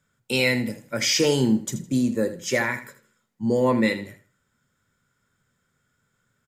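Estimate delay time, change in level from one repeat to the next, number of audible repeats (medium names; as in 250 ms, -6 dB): 80 ms, -12.0 dB, 2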